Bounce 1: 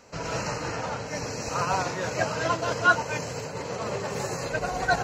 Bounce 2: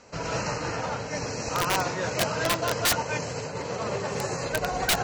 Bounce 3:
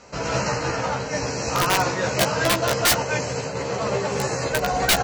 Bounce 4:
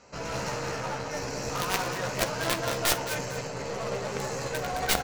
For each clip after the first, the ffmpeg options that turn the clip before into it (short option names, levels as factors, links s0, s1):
-af "lowpass=f=8400:w=0.5412,lowpass=f=8400:w=1.3066,aeval=exprs='(mod(7.5*val(0)+1,2)-1)/7.5':c=same,volume=1.12"
-filter_complex "[0:a]asplit=2[s0][s1];[s1]adelay=15,volume=0.596[s2];[s0][s2]amix=inputs=2:normalize=0,volume=1.58"
-filter_complex "[0:a]aeval=exprs='clip(val(0),-1,0.0708)':c=same,asplit=2[s0][s1];[s1]aecho=0:1:49|217|446:0.211|0.422|0.112[s2];[s0][s2]amix=inputs=2:normalize=0,aeval=exprs='0.422*(cos(1*acos(clip(val(0)/0.422,-1,1)))-cos(1*PI/2))+0.106*(cos(3*acos(clip(val(0)/0.422,-1,1)))-cos(3*PI/2))+0.0133*(cos(5*acos(clip(val(0)/0.422,-1,1)))-cos(5*PI/2))+0.0188*(cos(6*acos(clip(val(0)/0.422,-1,1)))-cos(6*PI/2))':c=same"